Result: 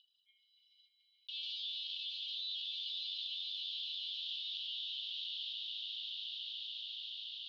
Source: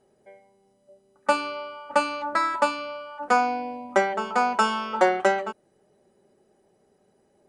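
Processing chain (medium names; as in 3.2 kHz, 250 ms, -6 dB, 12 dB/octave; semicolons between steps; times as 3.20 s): resonances exaggerated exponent 2; in parallel at -5 dB: companded quantiser 2-bit; on the sum: overload inside the chain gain 10.5 dB; peak limiter -19.5 dBFS, peak gain reduction 9 dB; steep high-pass 3 kHz 96 dB/octave; random-step tremolo; steep low-pass 3.9 kHz 48 dB/octave; echo with a slow build-up 143 ms, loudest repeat 5, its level -10 dB; level flattener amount 70%; trim +5.5 dB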